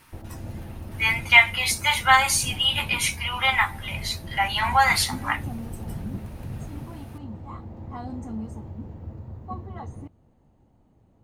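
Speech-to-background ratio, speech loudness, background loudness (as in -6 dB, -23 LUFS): 16.0 dB, -21.0 LUFS, -37.0 LUFS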